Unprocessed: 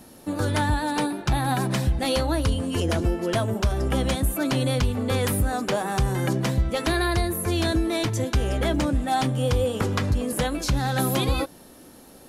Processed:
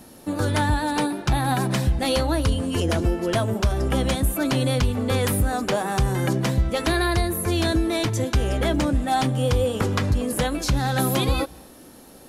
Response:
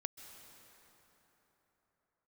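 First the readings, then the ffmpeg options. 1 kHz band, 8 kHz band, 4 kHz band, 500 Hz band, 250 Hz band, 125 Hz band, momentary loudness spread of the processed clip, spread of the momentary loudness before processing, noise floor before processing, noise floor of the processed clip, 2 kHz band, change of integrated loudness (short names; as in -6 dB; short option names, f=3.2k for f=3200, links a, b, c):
+1.5 dB, +1.5 dB, +1.5 dB, +1.5 dB, +1.5 dB, +1.5 dB, 2 LU, 2 LU, -48 dBFS, -46 dBFS, +1.5 dB, +1.5 dB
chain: -filter_complex "[0:a]asplit=2[a][b];[1:a]atrim=start_sample=2205,afade=t=out:st=0.32:d=0.01,atrim=end_sample=14553[c];[b][c]afir=irnorm=-1:irlink=0,volume=-11dB[d];[a][d]amix=inputs=2:normalize=0"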